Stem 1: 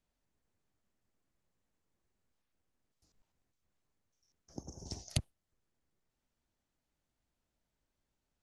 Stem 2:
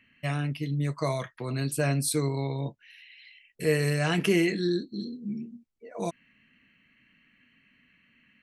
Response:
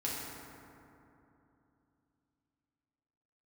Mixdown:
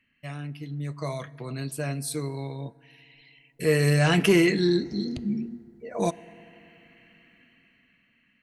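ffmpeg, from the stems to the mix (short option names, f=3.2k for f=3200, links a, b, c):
-filter_complex "[0:a]lowpass=4.5k,volume=-6dB,asplit=2[a][b];[b]volume=-16.5dB[c];[1:a]dynaudnorm=f=270:g=11:m=12dB,volume=2dB,afade=t=out:st=1.25:d=0.58:silence=0.473151,afade=t=in:st=3.28:d=0.69:silence=0.316228,asplit=2[d][e];[e]volume=-23dB[f];[2:a]atrim=start_sample=2205[g];[c][f]amix=inputs=2:normalize=0[h];[h][g]afir=irnorm=-1:irlink=0[i];[a][d][i]amix=inputs=3:normalize=0,asoftclip=type=tanh:threshold=-9dB"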